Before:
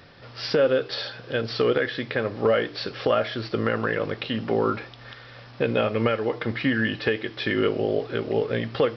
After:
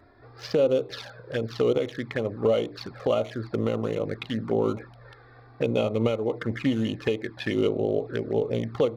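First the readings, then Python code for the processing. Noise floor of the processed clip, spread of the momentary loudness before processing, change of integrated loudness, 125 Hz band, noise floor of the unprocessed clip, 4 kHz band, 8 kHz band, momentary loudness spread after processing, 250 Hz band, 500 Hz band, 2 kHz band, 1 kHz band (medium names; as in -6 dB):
-52 dBFS, 8 LU, -2.0 dB, 0.0 dB, -45 dBFS, -6.5 dB, no reading, 7 LU, -0.5 dB, -1.5 dB, -9.5 dB, -6.5 dB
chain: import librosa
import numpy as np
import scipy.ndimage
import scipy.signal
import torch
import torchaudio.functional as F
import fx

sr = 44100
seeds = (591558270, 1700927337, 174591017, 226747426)

y = fx.wiener(x, sr, points=15)
y = fx.env_flanger(y, sr, rest_ms=3.2, full_db=-21.5)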